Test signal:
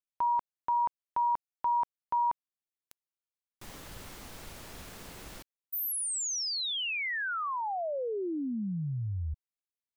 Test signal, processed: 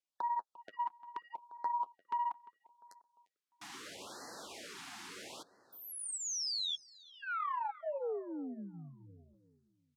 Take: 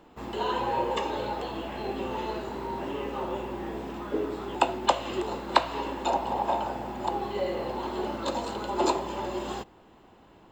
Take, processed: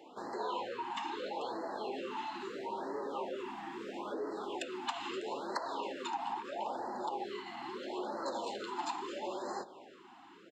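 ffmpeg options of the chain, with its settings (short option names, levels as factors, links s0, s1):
-filter_complex "[0:a]acompressor=threshold=0.01:ratio=2.5:attack=8.5:release=62:detection=rms,flanger=delay=2.2:depth=9.1:regen=-30:speed=0.88:shape=triangular,aeval=exprs='0.0531*(cos(1*acos(clip(val(0)/0.0531,-1,1)))-cos(1*PI/2))+0.0106*(cos(2*acos(clip(val(0)/0.0531,-1,1)))-cos(2*PI/2))+0.00944*(cos(5*acos(clip(val(0)/0.0531,-1,1)))-cos(5*PI/2))+0.00299*(cos(7*acos(clip(val(0)/0.0531,-1,1)))-cos(7*PI/2))':c=same,highpass=340,lowpass=7800,asplit=2[s0][s1];[s1]adelay=349,lowpass=f=2300:p=1,volume=0.133,asplit=2[s2][s3];[s3]adelay=349,lowpass=f=2300:p=1,volume=0.43,asplit=2[s4][s5];[s5]adelay=349,lowpass=f=2300:p=1,volume=0.43,asplit=2[s6][s7];[s7]adelay=349,lowpass=f=2300:p=1,volume=0.43[s8];[s2][s4][s6][s8]amix=inputs=4:normalize=0[s9];[s0][s9]amix=inputs=2:normalize=0,afftfilt=real='re*(1-between(b*sr/1024,470*pow(2900/470,0.5+0.5*sin(2*PI*0.76*pts/sr))/1.41,470*pow(2900/470,0.5+0.5*sin(2*PI*0.76*pts/sr))*1.41))':imag='im*(1-between(b*sr/1024,470*pow(2900/470,0.5+0.5*sin(2*PI*0.76*pts/sr))/1.41,470*pow(2900/470,0.5+0.5*sin(2*PI*0.76*pts/sr))*1.41))':win_size=1024:overlap=0.75,volume=1.33"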